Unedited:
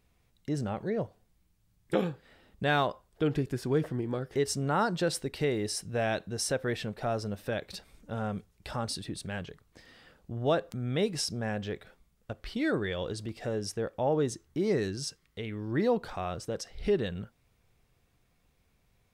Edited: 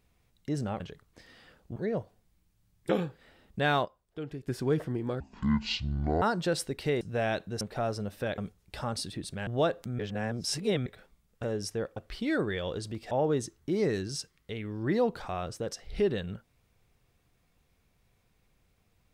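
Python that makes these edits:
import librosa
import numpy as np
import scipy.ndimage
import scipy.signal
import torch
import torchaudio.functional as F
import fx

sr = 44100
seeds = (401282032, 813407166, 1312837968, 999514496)

y = fx.edit(x, sr, fx.clip_gain(start_s=2.89, length_s=0.63, db=-10.5),
    fx.speed_span(start_s=4.24, length_s=0.53, speed=0.52),
    fx.cut(start_s=5.56, length_s=0.25),
    fx.cut(start_s=6.41, length_s=0.46),
    fx.cut(start_s=7.64, length_s=0.66),
    fx.move(start_s=9.39, length_s=0.96, to_s=0.8),
    fx.reverse_span(start_s=10.87, length_s=0.87),
    fx.move(start_s=13.45, length_s=0.54, to_s=12.31), tone=tone)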